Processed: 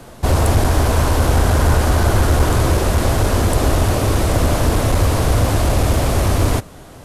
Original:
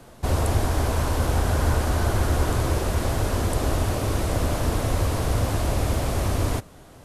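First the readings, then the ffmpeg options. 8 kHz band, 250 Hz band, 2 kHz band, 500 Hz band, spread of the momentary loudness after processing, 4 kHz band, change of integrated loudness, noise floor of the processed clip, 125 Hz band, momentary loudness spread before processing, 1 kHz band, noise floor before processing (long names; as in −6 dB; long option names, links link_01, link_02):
+8.0 dB, +8.0 dB, +8.0 dB, +8.0 dB, 2 LU, +8.0 dB, +8.0 dB, −39 dBFS, +8.0 dB, 2 LU, +8.0 dB, −47 dBFS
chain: -af "acontrast=37,aeval=exprs='clip(val(0),-1,0.237)':channel_layout=same,volume=3dB"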